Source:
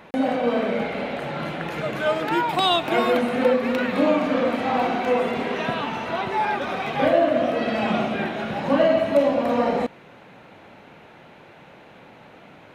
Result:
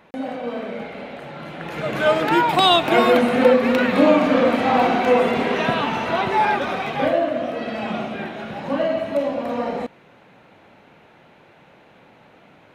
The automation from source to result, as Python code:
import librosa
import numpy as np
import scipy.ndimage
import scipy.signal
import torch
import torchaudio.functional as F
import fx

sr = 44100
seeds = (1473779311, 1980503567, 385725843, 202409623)

y = fx.gain(x, sr, db=fx.line((1.45, -6.0), (2.03, 5.0), (6.47, 5.0), (7.39, -3.5)))